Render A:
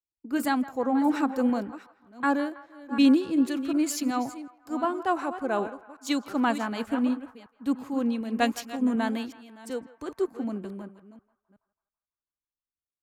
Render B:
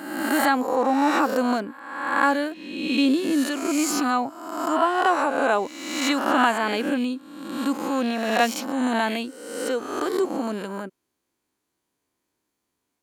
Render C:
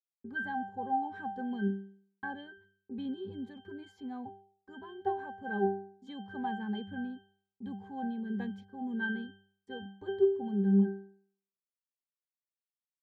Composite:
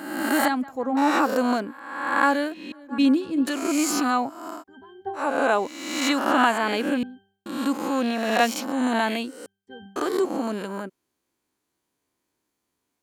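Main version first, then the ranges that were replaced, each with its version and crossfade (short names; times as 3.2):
B
0.48–0.97 from A
2.72–3.47 from A
4.56–5.21 from C, crossfade 0.16 s
7.03–7.46 from C
9.46–9.96 from C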